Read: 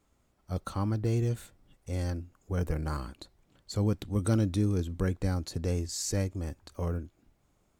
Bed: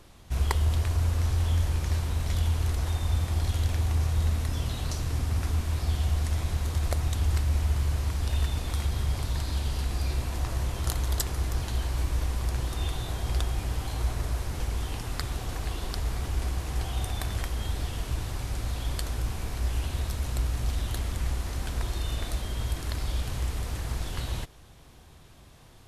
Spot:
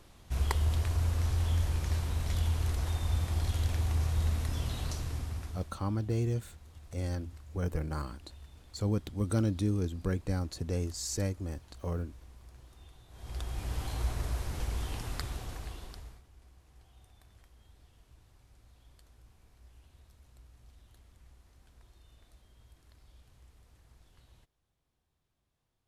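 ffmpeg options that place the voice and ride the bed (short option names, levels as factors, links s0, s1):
-filter_complex "[0:a]adelay=5050,volume=0.75[s0];[1:a]volume=6.68,afade=t=out:st=4.82:d=0.94:silence=0.0944061,afade=t=in:st=13.1:d=0.71:silence=0.0944061,afade=t=out:st=15.06:d=1.17:silence=0.0562341[s1];[s0][s1]amix=inputs=2:normalize=0"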